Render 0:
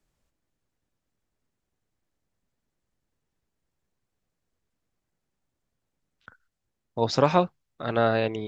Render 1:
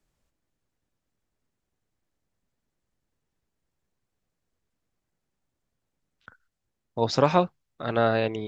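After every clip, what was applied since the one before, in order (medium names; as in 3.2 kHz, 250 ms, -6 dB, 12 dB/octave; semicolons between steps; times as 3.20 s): no audible change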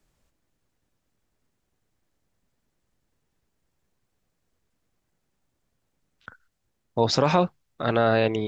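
loudness maximiser +12.5 dB; trim -7 dB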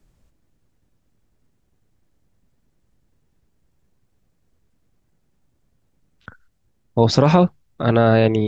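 bass shelf 370 Hz +10 dB; trim +2 dB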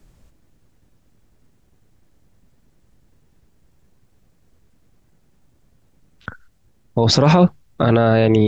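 peak limiter -12.5 dBFS, peak gain reduction 11 dB; trim +8 dB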